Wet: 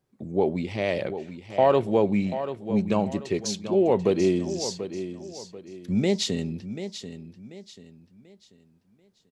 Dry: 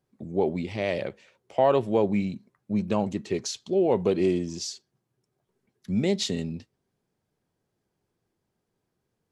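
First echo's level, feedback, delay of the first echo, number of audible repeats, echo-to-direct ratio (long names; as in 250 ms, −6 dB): −11.0 dB, 34%, 738 ms, 3, −10.5 dB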